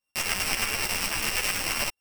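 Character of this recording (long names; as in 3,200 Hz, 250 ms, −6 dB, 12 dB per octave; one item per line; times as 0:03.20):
a buzz of ramps at a fixed pitch in blocks of 16 samples
tremolo saw up 9.3 Hz, depth 60%
a shimmering, thickened sound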